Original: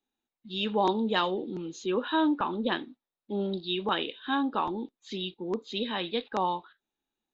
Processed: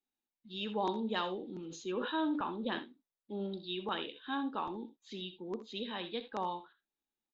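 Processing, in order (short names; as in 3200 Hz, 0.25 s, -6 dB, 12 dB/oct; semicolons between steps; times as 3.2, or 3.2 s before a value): on a send: early reflections 66 ms -14 dB, 80 ms -16.5 dB; 1.54–2.79 on the sum: sustainer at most 61 dB/s; gain -8.5 dB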